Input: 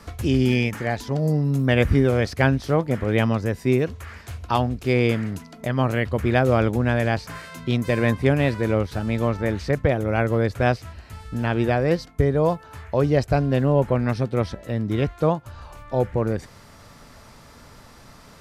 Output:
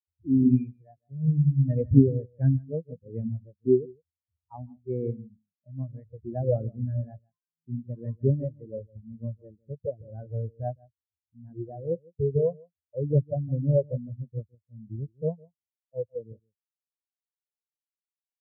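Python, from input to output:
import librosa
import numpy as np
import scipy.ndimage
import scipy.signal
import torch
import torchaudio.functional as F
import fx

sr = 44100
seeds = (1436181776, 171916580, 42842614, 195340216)

p1 = scipy.signal.sosfilt(scipy.signal.butter(2, 79.0, 'highpass', fs=sr, output='sos'), x)
p2 = p1 + fx.echo_single(p1, sr, ms=158, db=-6.5, dry=0)
y = fx.spectral_expand(p2, sr, expansion=4.0)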